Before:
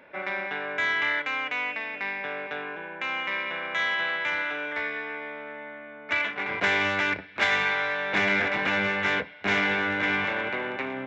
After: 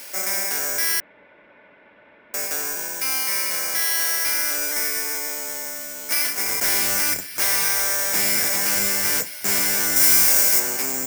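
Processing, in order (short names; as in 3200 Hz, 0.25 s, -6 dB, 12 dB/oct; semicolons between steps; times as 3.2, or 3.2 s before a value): switching spikes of -29 dBFS; careless resampling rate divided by 6×, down filtered, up zero stuff; soft clip -10.5 dBFS, distortion -10 dB; 1–2.34 room tone; 9.96–10.6 high shelf 4200 Hz +7.5 dB; gain +1.5 dB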